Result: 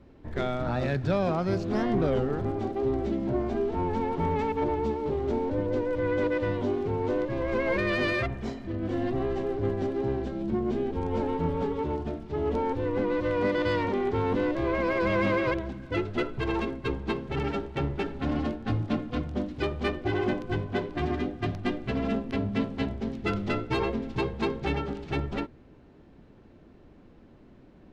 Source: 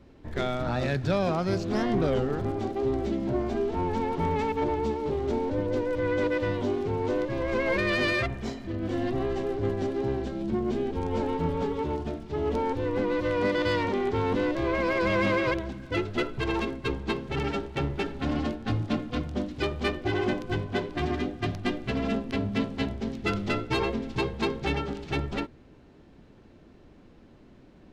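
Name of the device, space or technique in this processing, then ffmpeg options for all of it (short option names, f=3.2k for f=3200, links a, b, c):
behind a face mask: -af "highshelf=f=3.3k:g=-8"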